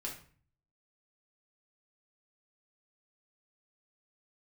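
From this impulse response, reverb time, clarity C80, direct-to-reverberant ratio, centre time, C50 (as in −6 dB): 0.45 s, 12.0 dB, −3.0 dB, 24 ms, 7.5 dB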